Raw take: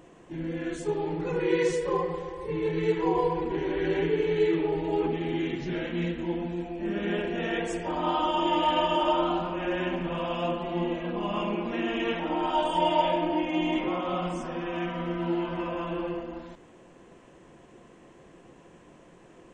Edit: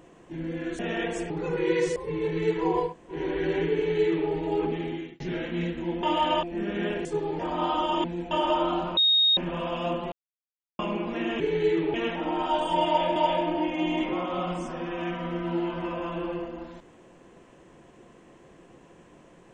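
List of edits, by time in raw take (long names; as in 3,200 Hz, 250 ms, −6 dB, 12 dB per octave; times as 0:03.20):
0:00.79–0:01.13: swap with 0:07.33–0:07.84
0:01.79–0:02.37: remove
0:03.29–0:03.55: fill with room tone, crossfade 0.16 s
0:04.16–0:04.70: duplicate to 0:11.98
0:05.20–0:05.61: fade out
0:06.44–0:06.71: swap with 0:08.49–0:08.89
0:09.55–0:09.95: beep over 3,730 Hz −17.5 dBFS
0:10.70–0:11.37: silence
0:12.91–0:13.20: repeat, 2 plays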